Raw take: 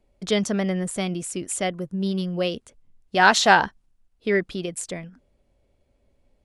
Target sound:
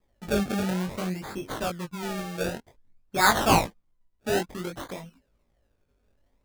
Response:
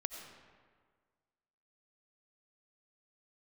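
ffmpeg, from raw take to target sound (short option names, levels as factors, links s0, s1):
-af "acrusher=samples=30:mix=1:aa=0.000001:lfo=1:lforange=30:lforate=0.55,flanger=delay=17.5:depth=5.1:speed=0.55,volume=0.841"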